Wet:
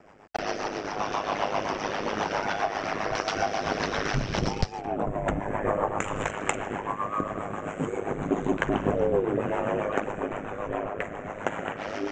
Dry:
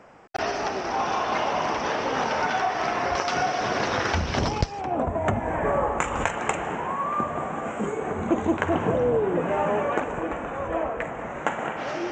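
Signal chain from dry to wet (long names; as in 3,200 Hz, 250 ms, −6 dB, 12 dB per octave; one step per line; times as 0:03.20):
ring modulation 51 Hz
rotating-speaker cabinet horn 7.5 Hz
level +2.5 dB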